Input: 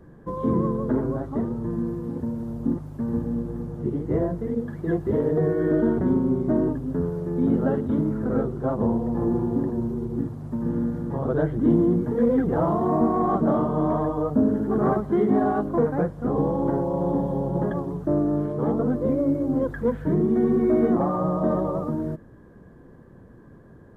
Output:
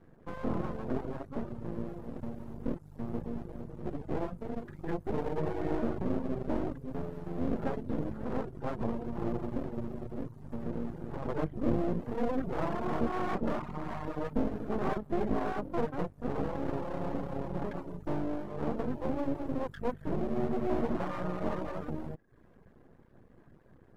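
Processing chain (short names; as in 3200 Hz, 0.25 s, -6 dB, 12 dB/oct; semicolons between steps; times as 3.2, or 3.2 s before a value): 13.59–14.08 fixed phaser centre 1100 Hz, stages 4; half-wave rectifier; reverb removal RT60 0.51 s; gain -5.5 dB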